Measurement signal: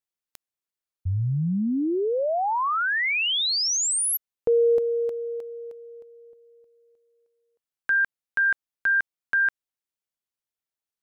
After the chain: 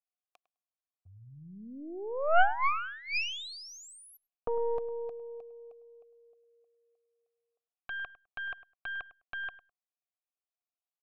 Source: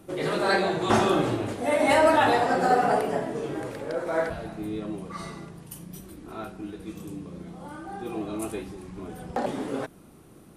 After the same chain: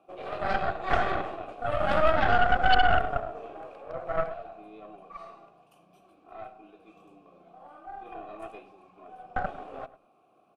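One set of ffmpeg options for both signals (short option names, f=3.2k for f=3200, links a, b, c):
-filter_complex "[0:a]asplit=3[a][b][c];[a]bandpass=f=730:t=q:w=8,volume=0dB[d];[b]bandpass=f=1.09k:t=q:w=8,volume=-6dB[e];[c]bandpass=f=2.44k:t=q:w=8,volume=-9dB[f];[d][e][f]amix=inputs=3:normalize=0,aeval=exprs='0.211*(cos(1*acos(clip(val(0)/0.211,-1,1)))-cos(1*PI/2))+0.0168*(cos(5*acos(clip(val(0)/0.211,-1,1)))-cos(5*PI/2))+0.0841*(cos(6*acos(clip(val(0)/0.211,-1,1)))-cos(6*PI/2))':c=same,asplit=2[g][h];[h]adelay=103,lowpass=f=2.2k:p=1,volume=-15.5dB,asplit=2[i][j];[j]adelay=103,lowpass=f=2.2k:p=1,volume=0.15[k];[g][i][k]amix=inputs=3:normalize=0"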